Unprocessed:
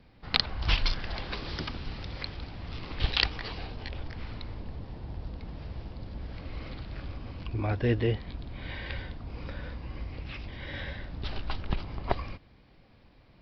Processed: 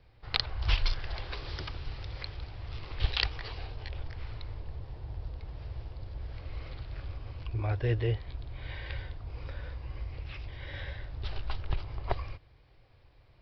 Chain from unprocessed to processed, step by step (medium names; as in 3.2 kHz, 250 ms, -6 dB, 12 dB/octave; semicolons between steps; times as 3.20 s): FFT filter 120 Hz 0 dB, 210 Hz -18 dB, 380 Hz -4 dB